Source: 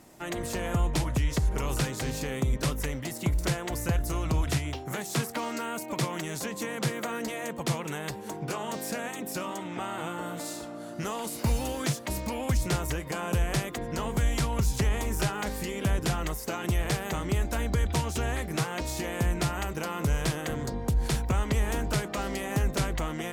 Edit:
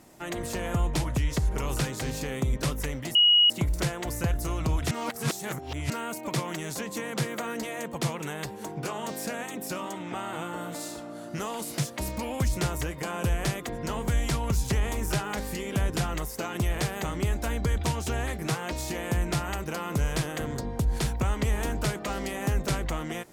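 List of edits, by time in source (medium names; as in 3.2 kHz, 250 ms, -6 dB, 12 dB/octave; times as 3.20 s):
3.15 s: add tone 2.9 kHz -15.5 dBFS 0.35 s
4.56–5.55 s: reverse
11.43–11.87 s: delete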